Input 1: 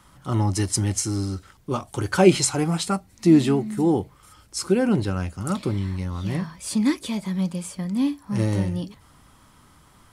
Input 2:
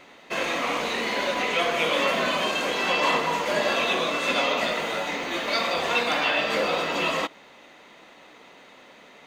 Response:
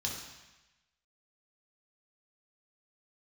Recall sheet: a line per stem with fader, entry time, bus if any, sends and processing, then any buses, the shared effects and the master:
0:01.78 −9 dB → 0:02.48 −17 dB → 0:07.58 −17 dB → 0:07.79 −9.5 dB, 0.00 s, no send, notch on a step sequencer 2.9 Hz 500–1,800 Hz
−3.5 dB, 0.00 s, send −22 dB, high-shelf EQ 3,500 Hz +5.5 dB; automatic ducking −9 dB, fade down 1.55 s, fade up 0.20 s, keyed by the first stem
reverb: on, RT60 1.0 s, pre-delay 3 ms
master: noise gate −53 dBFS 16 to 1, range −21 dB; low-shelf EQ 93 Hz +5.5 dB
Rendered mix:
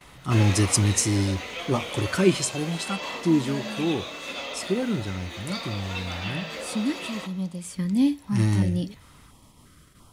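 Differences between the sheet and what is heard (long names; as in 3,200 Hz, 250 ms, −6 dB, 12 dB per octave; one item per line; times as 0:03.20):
stem 1 −9.0 dB → +2.5 dB
master: missing low-shelf EQ 93 Hz +5.5 dB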